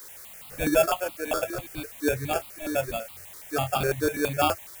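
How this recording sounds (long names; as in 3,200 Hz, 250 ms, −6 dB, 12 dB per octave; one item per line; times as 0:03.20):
aliases and images of a low sample rate 2,000 Hz, jitter 0%
sample-and-hold tremolo
a quantiser's noise floor 8 bits, dither triangular
notches that jump at a steady rate 12 Hz 730–1,700 Hz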